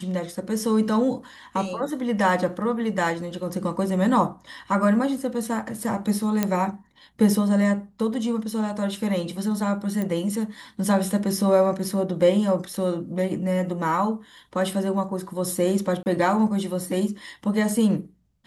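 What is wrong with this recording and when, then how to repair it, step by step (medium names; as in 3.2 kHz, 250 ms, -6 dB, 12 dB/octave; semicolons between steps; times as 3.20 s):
6.43 s: pop -7 dBFS
10.02 s: pop -16 dBFS
16.03–16.06 s: dropout 29 ms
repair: de-click; interpolate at 16.03 s, 29 ms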